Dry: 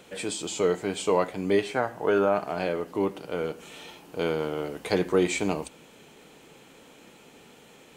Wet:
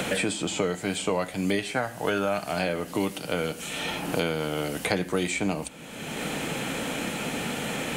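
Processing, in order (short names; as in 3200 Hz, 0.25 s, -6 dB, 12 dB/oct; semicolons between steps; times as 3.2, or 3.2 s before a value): fifteen-band EQ 400 Hz -9 dB, 1000 Hz -6 dB, 10000 Hz +6 dB; three-band squash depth 100%; gain +3.5 dB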